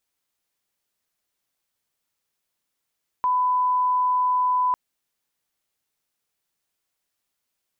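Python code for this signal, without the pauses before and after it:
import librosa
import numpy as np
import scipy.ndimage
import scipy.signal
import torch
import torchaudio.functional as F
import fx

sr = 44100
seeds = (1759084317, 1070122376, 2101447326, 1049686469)

y = fx.lineup_tone(sr, length_s=1.5, level_db=-18.0)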